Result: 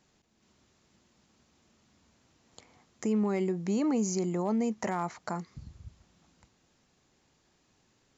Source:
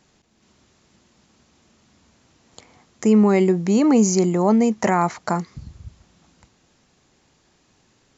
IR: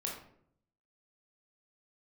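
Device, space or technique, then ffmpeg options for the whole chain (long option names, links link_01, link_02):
clipper into limiter: -af "asoftclip=type=hard:threshold=-8dB,alimiter=limit=-13dB:level=0:latency=1:release=277,volume=-8.5dB"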